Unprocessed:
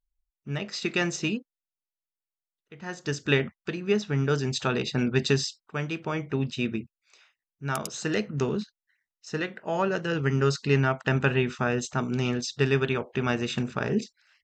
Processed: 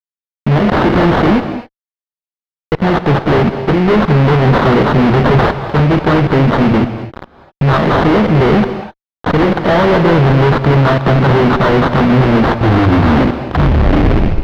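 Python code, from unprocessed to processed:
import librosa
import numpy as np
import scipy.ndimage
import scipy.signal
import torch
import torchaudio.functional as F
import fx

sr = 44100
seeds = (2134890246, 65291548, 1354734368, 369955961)

y = fx.tape_stop_end(x, sr, length_s=2.2)
y = fx.level_steps(y, sr, step_db=15)
y = fx.sample_hold(y, sr, seeds[0], rate_hz=2500.0, jitter_pct=20)
y = fx.fuzz(y, sr, gain_db=53.0, gate_db=-55.0)
y = fx.air_absorb(y, sr, metres=320.0)
y = fx.rev_gated(y, sr, seeds[1], gate_ms=280, shape='rising', drr_db=9.5)
y = y * librosa.db_to_amplitude(5.5)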